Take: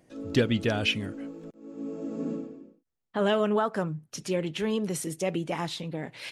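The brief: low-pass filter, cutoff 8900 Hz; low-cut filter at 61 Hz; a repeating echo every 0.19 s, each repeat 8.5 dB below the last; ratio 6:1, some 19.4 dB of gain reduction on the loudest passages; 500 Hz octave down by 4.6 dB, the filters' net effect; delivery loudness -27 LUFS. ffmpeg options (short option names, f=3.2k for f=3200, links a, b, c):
-af "highpass=61,lowpass=8.9k,equalizer=f=500:t=o:g=-6,acompressor=threshold=-43dB:ratio=6,aecho=1:1:190|380|570|760:0.376|0.143|0.0543|0.0206,volume=18.5dB"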